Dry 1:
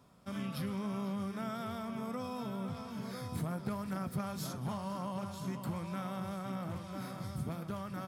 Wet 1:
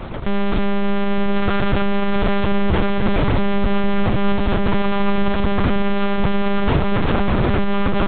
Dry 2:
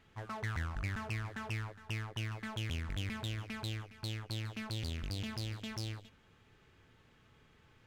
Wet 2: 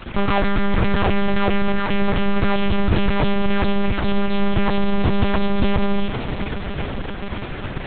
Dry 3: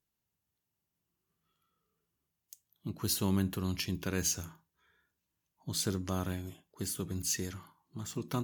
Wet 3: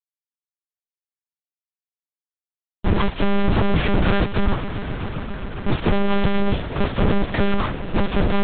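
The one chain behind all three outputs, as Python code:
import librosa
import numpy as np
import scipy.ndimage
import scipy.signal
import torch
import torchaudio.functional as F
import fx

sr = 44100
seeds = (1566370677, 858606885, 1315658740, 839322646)

p1 = fx.dead_time(x, sr, dead_ms=0.12)
p2 = fx.low_shelf(p1, sr, hz=410.0, db=8.0)
p3 = fx.fuzz(p2, sr, gain_db=54.0, gate_db=-57.0)
p4 = p3 + fx.echo_swell(p3, sr, ms=134, loudest=5, wet_db=-17.5, dry=0)
p5 = fx.lpc_monotone(p4, sr, seeds[0], pitch_hz=200.0, order=8)
y = p5 * librosa.db_to_amplitude(-2.0)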